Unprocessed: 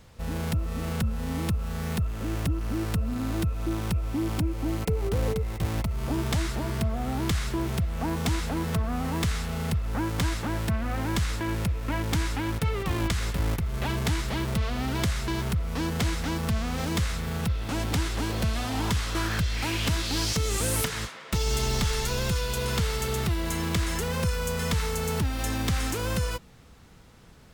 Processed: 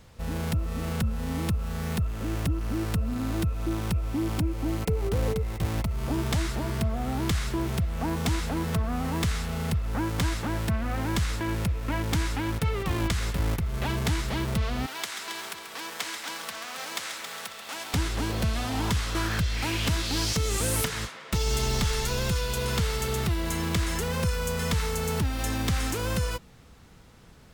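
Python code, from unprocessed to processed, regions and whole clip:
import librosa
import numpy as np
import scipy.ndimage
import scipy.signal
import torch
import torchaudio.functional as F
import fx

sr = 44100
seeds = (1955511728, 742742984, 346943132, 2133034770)

y = fx.chain(x, sr, fx.bessel_highpass(hz=1000.0, order=2),
    fx.echo_heads(ms=136, heads='first and second', feedback_pct=48, wet_db=-10), at=(14.86, 17.94))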